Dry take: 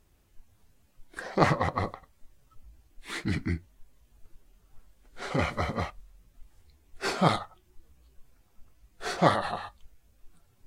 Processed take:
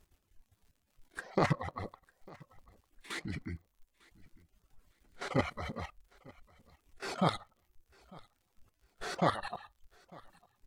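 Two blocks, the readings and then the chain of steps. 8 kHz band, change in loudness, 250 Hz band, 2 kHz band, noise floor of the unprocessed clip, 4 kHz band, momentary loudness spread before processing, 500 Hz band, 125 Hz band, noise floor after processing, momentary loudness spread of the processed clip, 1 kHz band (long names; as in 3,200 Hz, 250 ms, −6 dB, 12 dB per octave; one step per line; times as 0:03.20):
−7.0 dB, −7.0 dB, −6.0 dB, −7.0 dB, −65 dBFS, −6.5 dB, 15 LU, −6.5 dB, −6.5 dB, −78 dBFS, 24 LU, −7.5 dB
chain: reverb reduction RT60 0.83 s
output level in coarse steps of 13 dB
surface crackle 55 per second −58 dBFS
on a send: repeating echo 900 ms, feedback 24%, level −24 dB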